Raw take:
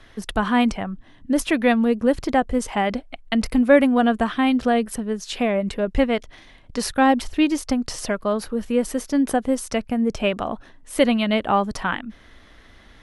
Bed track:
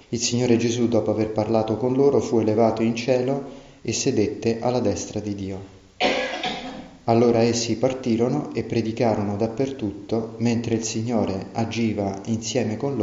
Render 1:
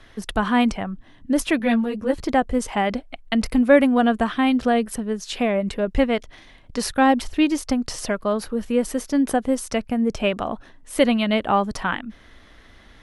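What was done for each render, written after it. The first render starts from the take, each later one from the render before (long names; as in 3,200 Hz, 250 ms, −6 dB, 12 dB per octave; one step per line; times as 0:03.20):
0:01.59–0:02.24: string-ensemble chorus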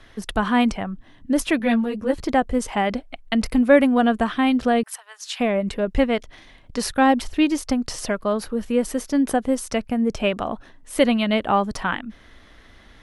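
0:04.83–0:05.40: Butterworth high-pass 790 Hz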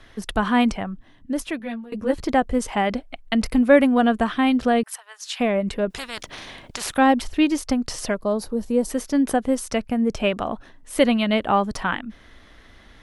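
0:00.74–0:01.92: fade out, to −18 dB
0:05.90–0:06.98: every bin compressed towards the loudest bin 4 to 1
0:08.14–0:08.90: flat-topped bell 2,000 Hz −9.5 dB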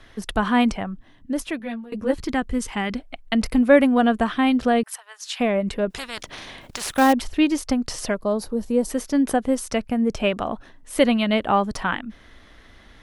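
0:02.18–0:03.00: parametric band 630 Hz −11.5 dB 0.96 octaves
0:06.61–0:07.13: floating-point word with a short mantissa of 2 bits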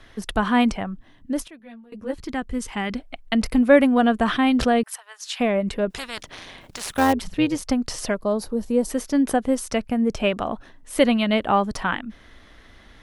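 0:01.48–0:03.06: fade in, from −18.5 dB
0:04.17–0:04.82: level that may fall only so fast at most 84 dB per second
0:06.20–0:07.62: amplitude modulation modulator 180 Hz, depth 35%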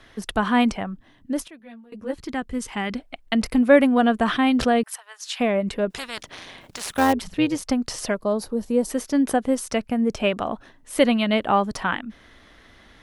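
low-shelf EQ 64 Hz −8 dB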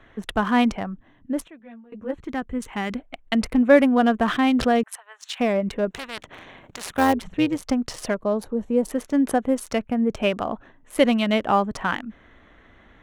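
adaptive Wiener filter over 9 samples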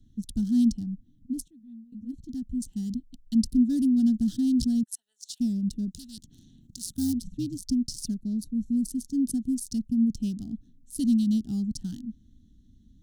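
elliptic band-stop filter 240–4,800 Hz, stop band 40 dB
dynamic equaliser 9,000 Hz, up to +4 dB, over −58 dBFS, Q 5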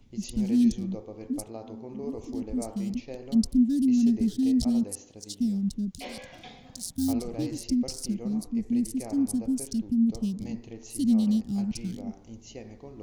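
mix in bed track −20 dB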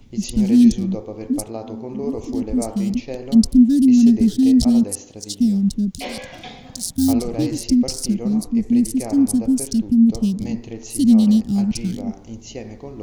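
level +10 dB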